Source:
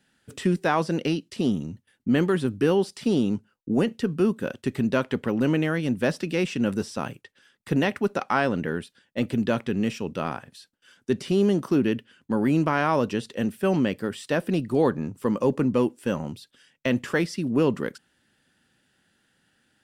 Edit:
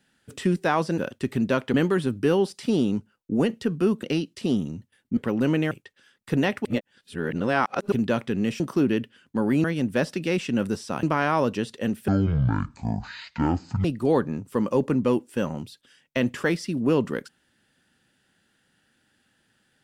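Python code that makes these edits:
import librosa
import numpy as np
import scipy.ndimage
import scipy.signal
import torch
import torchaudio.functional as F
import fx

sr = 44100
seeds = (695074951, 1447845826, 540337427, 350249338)

y = fx.edit(x, sr, fx.swap(start_s=0.98, length_s=1.14, other_s=4.41, other_length_s=0.76),
    fx.move(start_s=5.71, length_s=1.39, to_s=12.59),
    fx.reverse_span(start_s=8.04, length_s=1.27),
    fx.cut(start_s=9.99, length_s=1.56),
    fx.speed_span(start_s=13.64, length_s=0.9, speed=0.51), tone=tone)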